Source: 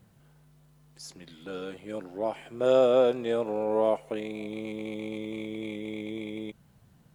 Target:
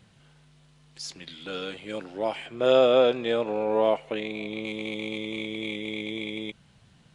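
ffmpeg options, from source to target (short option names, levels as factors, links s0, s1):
-filter_complex "[0:a]equalizer=f=3200:t=o:w=1.9:g=11,aresample=22050,aresample=44100,asettb=1/sr,asplit=3[s0][s1][s2];[s0]atrim=end=2.464[s3];[s1]atrim=start=2.46:end=4.65,asetpts=PTS-STARTPTS,afade=t=in:d=0.004:c=qsin,afade=t=out:st=2.186:d=0.004:c=qsin,aemphasis=mode=reproduction:type=cd[s4];[s2]atrim=start=4.646[s5];[s3][s4]acrossfade=d=0.004:c1=hsin:c2=qsin[s6];[s6][s5]acrossfade=d=0.004:c1=qsin:c2=hsin,volume=1.12"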